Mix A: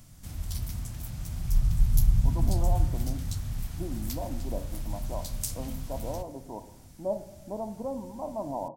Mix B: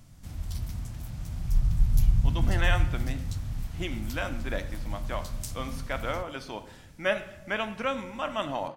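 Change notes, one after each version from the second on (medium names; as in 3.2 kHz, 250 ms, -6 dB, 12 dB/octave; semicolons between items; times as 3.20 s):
speech: remove rippled Chebyshev low-pass 1 kHz, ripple 3 dB; background: add treble shelf 5.9 kHz -9 dB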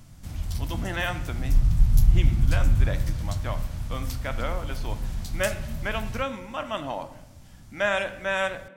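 speech: entry -1.65 s; background +4.0 dB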